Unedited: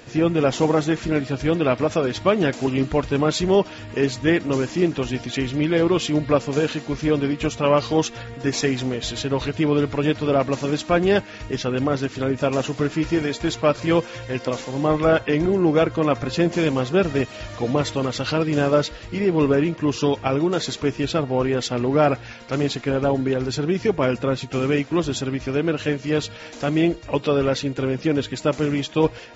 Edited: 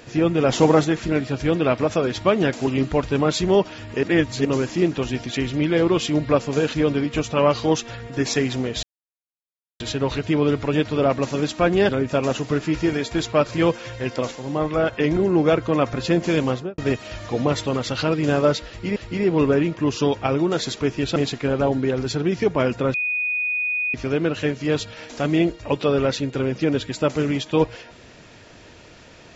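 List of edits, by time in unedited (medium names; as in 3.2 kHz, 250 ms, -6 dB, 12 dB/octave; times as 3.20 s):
0.49–0.85 s: gain +3.5 dB
4.03–4.45 s: reverse
6.74–7.01 s: delete
9.10 s: insert silence 0.97 s
11.19–12.18 s: delete
14.60–15.22 s: gain -3.5 dB
16.78–17.07 s: studio fade out
18.97–19.25 s: loop, 2 plays
21.17–22.59 s: delete
24.37–25.37 s: bleep 2.48 kHz -20.5 dBFS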